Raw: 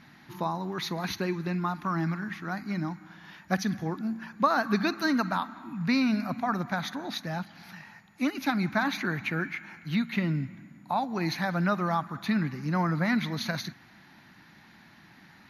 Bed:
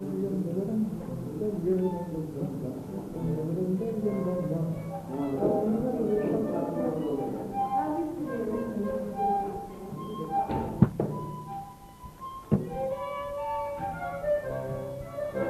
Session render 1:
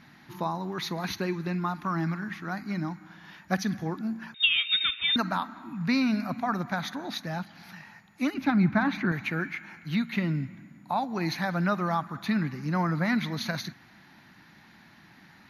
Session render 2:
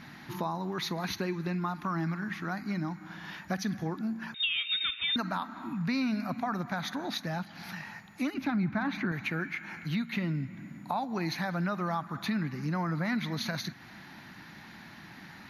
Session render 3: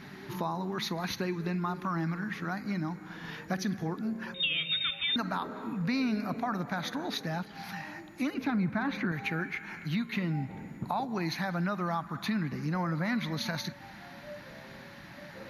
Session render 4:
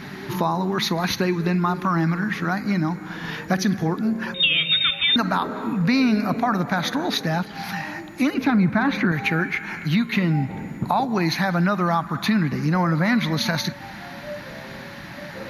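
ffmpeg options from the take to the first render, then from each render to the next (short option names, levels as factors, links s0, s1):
-filter_complex "[0:a]asettb=1/sr,asplit=3[s0][s1][s2];[s0]atrim=end=4.344[s3];[s1]atrim=start=4.34:end=5.16,asetpts=PTS-STARTPTS,afade=t=in:d=0.004:c=qsin,afade=t=out:st=0.816:d=0.004:c=qsin,lowpass=f=3300:t=q:w=0.5098,lowpass=f=3300:t=q:w=0.6013,lowpass=f=3300:t=q:w=0.9,lowpass=f=3300:t=q:w=2.563,afreqshift=-3900[s4];[s2]atrim=start=5.156[s5];[s3][s4]acrossfade=d=0.004:c1=hsin:c2=qsin[s6];[s6][s5]acrossfade=d=0.004:c1=qsin:c2=hsin,asettb=1/sr,asplit=3[s7][s8][s9];[s7]atrim=end=8.344[s10];[s8]atrim=start=8.34:end=9.12,asetpts=PTS-STARTPTS,afade=t=in:d=0.004:c=qsin,afade=t=out:st=0.776:d=0.004:c=qsin,bass=f=250:g=9,treble=f=4000:g=-13[s11];[s9]atrim=start=9.116[s12];[s10][s11]acrossfade=d=0.004:c1=hsin:c2=qsin[s13];[s13][s12]acrossfade=d=0.004:c1=qsin:c2=hsin"
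-filter_complex "[0:a]asplit=2[s0][s1];[s1]alimiter=limit=0.106:level=0:latency=1:release=26,volume=0.944[s2];[s0][s2]amix=inputs=2:normalize=0,acompressor=threshold=0.0158:ratio=2"
-filter_complex "[1:a]volume=0.119[s0];[0:a][s0]amix=inputs=2:normalize=0"
-af "volume=3.55"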